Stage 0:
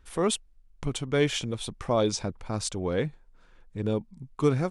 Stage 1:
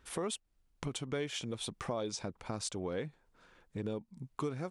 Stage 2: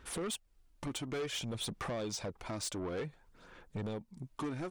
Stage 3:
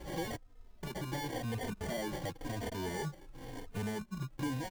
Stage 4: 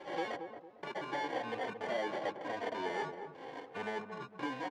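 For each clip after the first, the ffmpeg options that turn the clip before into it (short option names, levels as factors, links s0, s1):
-af "highpass=f=150:p=1,acompressor=threshold=0.0141:ratio=4,volume=1.12"
-af "aphaser=in_gain=1:out_gain=1:delay=3.4:decay=0.4:speed=0.56:type=sinusoidal,asoftclip=type=tanh:threshold=0.0141,volume=1.5"
-filter_complex "[0:a]alimiter=level_in=11.2:limit=0.0631:level=0:latency=1:release=56,volume=0.0891,acrusher=samples=34:mix=1:aa=0.000001,asplit=2[s0][s1];[s1]adelay=3.1,afreqshift=-0.95[s2];[s0][s2]amix=inputs=2:normalize=1,volume=5.31"
-filter_complex "[0:a]asplit=2[s0][s1];[s1]acrusher=samples=15:mix=1:aa=0.000001:lfo=1:lforange=15:lforate=0.71,volume=0.266[s2];[s0][s2]amix=inputs=2:normalize=0,highpass=510,lowpass=2800,asplit=2[s3][s4];[s4]adelay=227,lowpass=f=820:p=1,volume=0.501,asplit=2[s5][s6];[s6]adelay=227,lowpass=f=820:p=1,volume=0.38,asplit=2[s7][s8];[s8]adelay=227,lowpass=f=820:p=1,volume=0.38,asplit=2[s9][s10];[s10]adelay=227,lowpass=f=820:p=1,volume=0.38,asplit=2[s11][s12];[s12]adelay=227,lowpass=f=820:p=1,volume=0.38[s13];[s3][s5][s7][s9][s11][s13]amix=inputs=6:normalize=0,volume=1.58"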